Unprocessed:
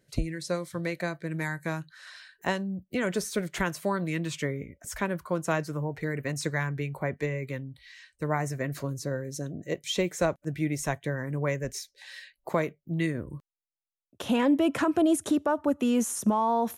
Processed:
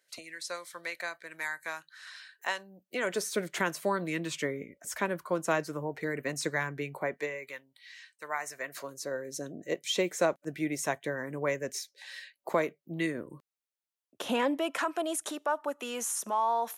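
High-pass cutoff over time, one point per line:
2.49 s 920 Hz
3.41 s 250 Hz
6.93 s 250 Hz
7.64 s 1 kHz
8.39 s 1 kHz
9.47 s 280 Hz
14.22 s 280 Hz
14.74 s 720 Hz

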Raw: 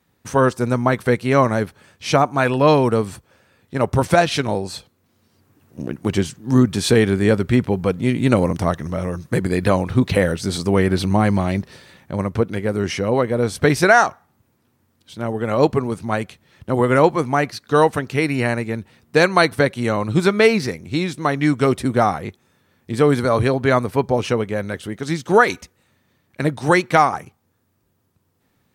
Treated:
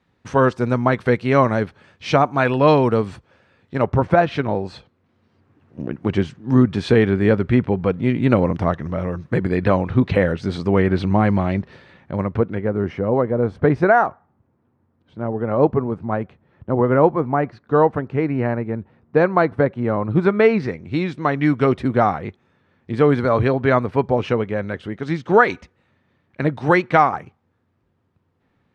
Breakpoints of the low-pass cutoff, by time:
3.79 s 3.8 kHz
4.04 s 1.5 kHz
4.72 s 2.6 kHz
12.22 s 2.6 kHz
12.89 s 1.2 kHz
19.88 s 1.2 kHz
21.00 s 2.7 kHz

